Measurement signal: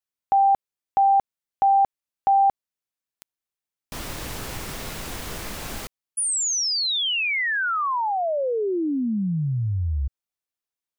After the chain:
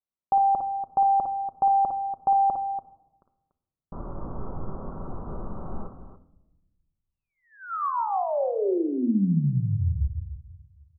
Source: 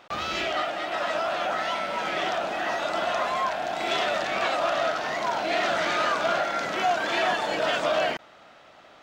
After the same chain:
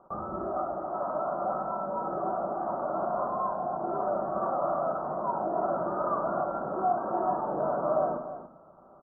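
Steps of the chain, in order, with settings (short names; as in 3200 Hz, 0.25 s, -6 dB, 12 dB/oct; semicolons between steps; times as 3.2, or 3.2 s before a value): steep low-pass 1300 Hz 72 dB/oct; low shelf 380 Hz +4 dB; on a send: loudspeakers at several distances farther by 19 m -8 dB, 99 m -11 dB; on the sum: shoebox room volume 3500 m³, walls furnished, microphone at 1.1 m; gain -4.5 dB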